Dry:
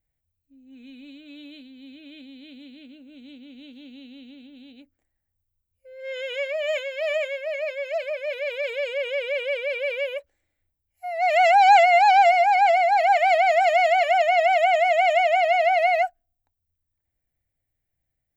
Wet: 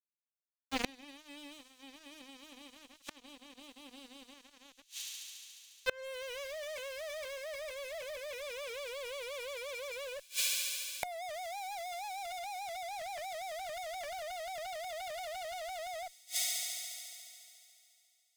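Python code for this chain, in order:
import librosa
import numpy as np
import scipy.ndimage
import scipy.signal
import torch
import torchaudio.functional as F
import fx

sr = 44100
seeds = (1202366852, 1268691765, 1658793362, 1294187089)

y = fx.fuzz(x, sr, gain_db=43.0, gate_db=-43.0)
y = fx.echo_wet_highpass(y, sr, ms=71, feedback_pct=83, hz=5400.0, wet_db=-8.0)
y = fx.gate_flip(y, sr, shuts_db=-21.0, range_db=-33)
y = F.gain(torch.from_numpy(y), 5.0).numpy()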